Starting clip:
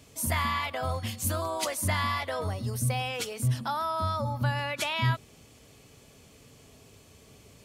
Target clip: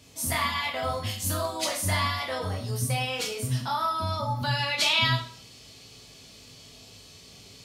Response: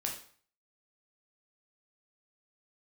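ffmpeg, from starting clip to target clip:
-filter_complex "[0:a]asetnsamples=n=441:p=0,asendcmd='4.43 equalizer g 14.5',equalizer=f=4.3k:t=o:w=1.1:g=5.5[a];[1:a]atrim=start_sample=2205,asetrate=48510,aresample=44100[b];[a][b]afir=irnorm=-1:irlink=0"

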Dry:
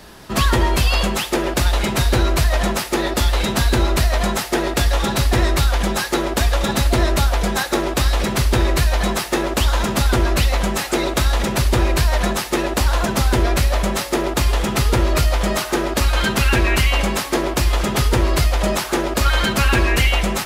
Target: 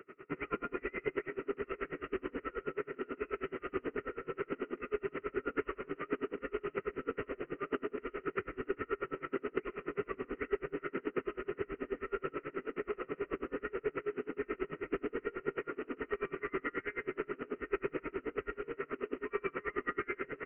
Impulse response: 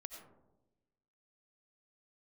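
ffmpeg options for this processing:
-filter_complex "[0:a]asplit=3[a][b][c];[a]bandpass=f=530:t=q:w=8,volume=0dB[d];[b]bandpass=f=1.84k:t=q:w=8,volume=-6dB[e];[c]bandpass=f=2.48k:t=q:w=8,volume=-9dB[f];[d][e][f]amix=inputs=3:normalize=0,aresample=8000,acrusher=bits=3:mode=log:mix=0:aa=0.000001,aresample=44100,acompressor=threshold=-37dB:ratio=6,asetrate=33038,aresample=44100,atempo=1.33484[g];[1:a]atrim=start_sample=2205[h];[g][h]afir=irnorm=-1:irlink=0,aeval=exprs='val(0)*pow(10,-31*(0.5-0.5*cos(2*PI*9.3*n/s))/20)':c=same,volume=12.5dB"

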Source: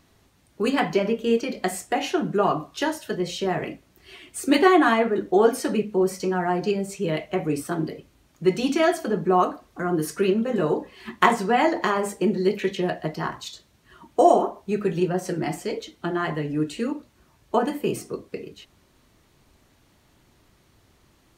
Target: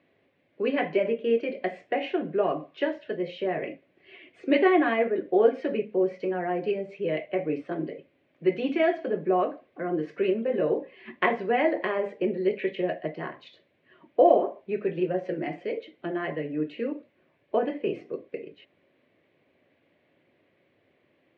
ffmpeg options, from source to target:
-af "highpass=f=130:w=0.5412,highpass=f=130:w=1.3066,equalizer=f=130:t=q:w=4:g=-9,equalizer=f=200:t=q:w=4:g=-8,equalizer=f=550:t=q:w=4:g=8,equalizer=f=900:t=q:w=4:g=-9,equalizer=f=1.3k:t=q:w=4:g=-10,equalizer=f=2.2k:t=q:w=4:g=4,lowpass=f=2.8k:w=0.5412,lowpass=f=2.8k:w=1.3066,volume=-3.5dB"

